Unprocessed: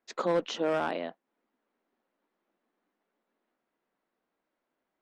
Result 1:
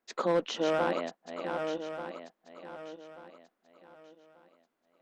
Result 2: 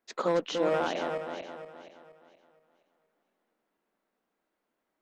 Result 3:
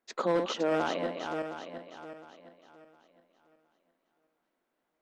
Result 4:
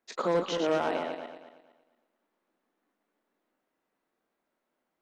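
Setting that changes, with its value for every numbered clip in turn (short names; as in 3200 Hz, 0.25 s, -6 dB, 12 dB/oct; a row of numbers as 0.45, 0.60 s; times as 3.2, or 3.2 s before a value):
regenerating reverse delay, time: 0.593, 0.236, 0.356, 0.115 s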